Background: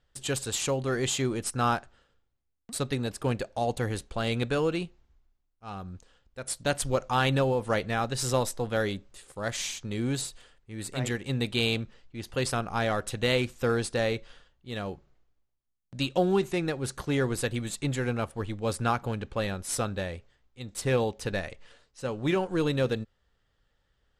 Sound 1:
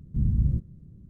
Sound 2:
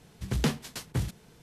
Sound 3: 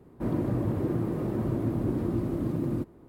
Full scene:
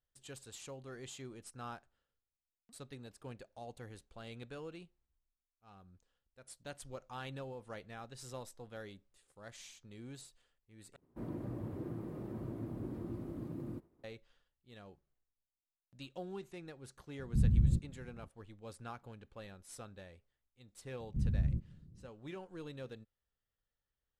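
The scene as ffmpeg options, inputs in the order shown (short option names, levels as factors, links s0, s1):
-filter_complex "[1:a]asplit=2[s0][s1];[0:a]volume=0.1[s2];[3:a]agate=range=0.0224:threshold=0.00355:ratio=3:release=100:detection=peak[s3];[s2]asplit=2[s4][s5];[s4]atrim=end=10.964[s6];[s3]atrim=end=3.08,asetpts=PTS-STARTPTS,volume=0.2[s7];[s5]atrim=start=14.036[s8];[s0]atrim=end=1.09,asetpts=PTS-STARTPTS,volume=0.596,afade=t=in:d=0.004:c=hsin,afade=t=out:st=1.086:d=0.004:c=hsin,adelay=17190[s9];[s1]atrim=end=1.09,asetpts=PTS-STARTPTS,volume=0.355,afade=t=in:d=0.004:c=hsin,afade=t=out:st=1.086:d=0.004:c=hsin,adelay=926100S[s10];[s6][s7]acrossfade=d=0.004:c1=hsin:c2=hsin[s11];[s11][s8]acrossfade=d=0.004:c1=hsin:c2=hsin[s12];[s12][s9][s10]amix=inputs=3:normalize=0"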